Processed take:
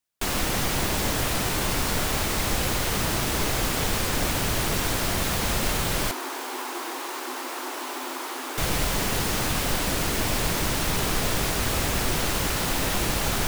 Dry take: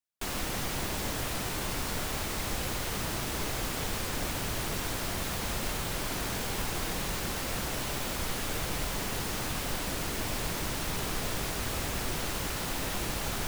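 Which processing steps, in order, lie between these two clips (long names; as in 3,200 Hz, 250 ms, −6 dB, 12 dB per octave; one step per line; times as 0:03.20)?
0:06.11–0:08.58: Chebyshev high-pass with heavy ripple 250 Hz, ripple 9 dB
level +8 dB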